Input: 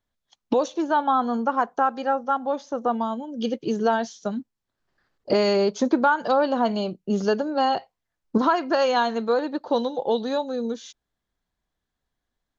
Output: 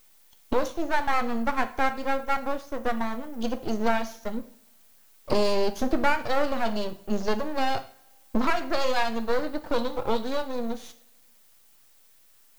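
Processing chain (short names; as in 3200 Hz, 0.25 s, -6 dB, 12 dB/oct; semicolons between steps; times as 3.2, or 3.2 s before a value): added noise violet -56 dBFS; half-wave rectifier; two-slope reverb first 0.47 s, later 1.7 s, from -24 dB, DRR 8.5 dB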